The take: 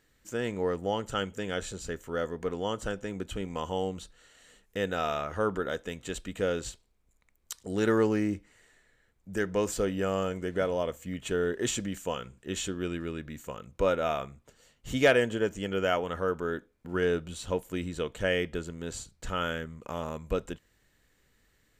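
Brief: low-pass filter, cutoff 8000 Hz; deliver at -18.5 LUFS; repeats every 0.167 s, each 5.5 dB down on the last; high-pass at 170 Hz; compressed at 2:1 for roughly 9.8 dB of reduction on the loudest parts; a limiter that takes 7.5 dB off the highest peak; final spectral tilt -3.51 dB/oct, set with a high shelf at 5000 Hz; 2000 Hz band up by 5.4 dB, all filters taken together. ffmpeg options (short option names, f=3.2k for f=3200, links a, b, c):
-af "highpass=170,lowpass=8k,equalizer=f=2k:t=o:g=6.5,highshelf=f=5k:g=4.5,acompressor=threshold=-32dB:ratio=2,alimiter=limit=-22.5dB:level=0:latency=1,aecho=1:1:167|334|501|668|835|1002|1169:0.531|0.281|0.149|0.079|0.0419|0.0222|0.0118,volume=17dB"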